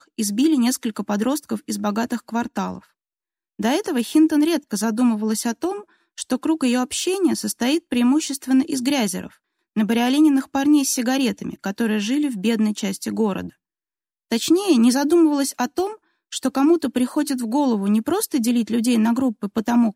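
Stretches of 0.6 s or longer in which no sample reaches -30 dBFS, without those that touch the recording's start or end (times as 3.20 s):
2.78–3.59 s
13.49–14.32 s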